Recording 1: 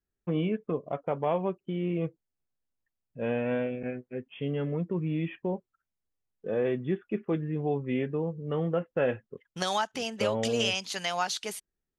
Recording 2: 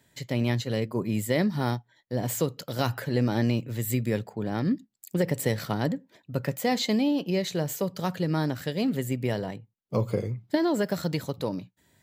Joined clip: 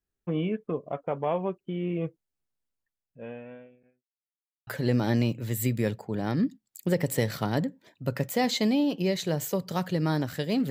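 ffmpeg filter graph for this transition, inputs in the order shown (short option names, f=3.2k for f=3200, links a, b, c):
-filter_complex "[0:a]apad=whole_dur=10.7,atrim=end=10.7,asplit=2[a][b];[a]atrim=end=4.12,asetpts=PTS-STARTPTS,afade=t=out:st=2.64:d=1.48:c=qua[c];[b]atrim=start=4.12:end=4.67,asetpts=PTS-STARTPTS,volume=0[d];[1:a]atrim=start=2.95:end=8.98,asetpts=PTS-STARTPTS,afade=t=in:d=0.004:c=hsin[e];[c][d][e]concat=n=3:v=0:a=1"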